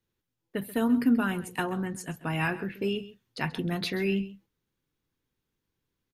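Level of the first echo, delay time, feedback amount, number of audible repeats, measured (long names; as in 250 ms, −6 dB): −16.5 dB, 133 ms, repeats not evenly spaced, 1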